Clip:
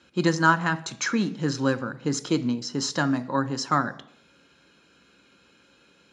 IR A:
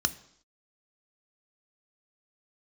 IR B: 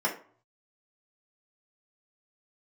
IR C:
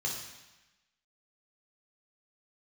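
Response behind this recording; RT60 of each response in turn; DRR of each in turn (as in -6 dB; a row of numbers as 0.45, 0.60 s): A; 0.70, 0.50, 1.0 s; 10.5, -3.5, -3.0 dB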